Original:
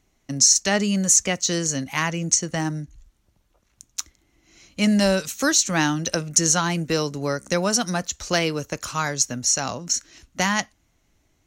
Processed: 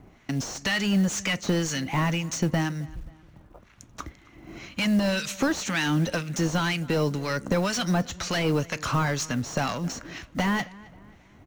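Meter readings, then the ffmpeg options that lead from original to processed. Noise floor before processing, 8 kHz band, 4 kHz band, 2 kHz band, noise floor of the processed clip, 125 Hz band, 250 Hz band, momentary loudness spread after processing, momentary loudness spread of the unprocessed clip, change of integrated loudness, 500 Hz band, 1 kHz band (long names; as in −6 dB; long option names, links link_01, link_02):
−67 dBFS, −15.0 dB, −5.5 dB, −2.5 dB, −55 dBFS, +1.0 dB, −1.5 dB, 13 LU, 12 LU, −5.5 dB, −3.5 dB, −3.0 dB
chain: -filter_complex "[0:a]bass=frequency=250:gain=14,treble=frequency=4000:gain=-7,acrossover=split=2400[link_01][link_02];[link_01]acompressor=threshold=-28dB:ratio=12[link_03];[link_03][link_02]amix=inputs=2:normalize=0,asplit=2[link_04][link_05];[link_05]highpass=frequency=720:poles=1,volume=28dB,asoftclip=type=tanh:threshold=-8.5dB[link_06];[link_04][link_06]amix=inputs=2:normalize=0,lowpass=frequency=1200:poles=1,volume=-6dB,acrossover=split=1200[link_07][link_08];[link_07]aeval=exprs='val(0)*(1-0.7/2+0.7/2*cos(2*PI*2*n/s))':channel_layout=same[link_09];[link_08]aeval=exprs='val(0)*(1-0.7/2-0.7/2*cos(2*PI*2*n/s))':channel_layout=same[link_10];[link_09][link_10]amix=inputs=2:normalize=0,acrusher=bits=7:mode=log:mix=0:aa=0.000001,asplit=2[link_11][link_12];[link_12]adelay=267,lowpass=frequency=3100:poles=1,volume=-21dB,asplit=2[link_13][link_14];[link_14]adelay=267,lowpass=frequency=3100:poles=1,volume=0.44,asplit=2[link_15][link_16];[link_16]adelay=267,lowpass=frequency=3100:poles=1,volume=0.44[link_17];[link_11][link_13][link_15][link_17]amix=inputs=4:normalize=0"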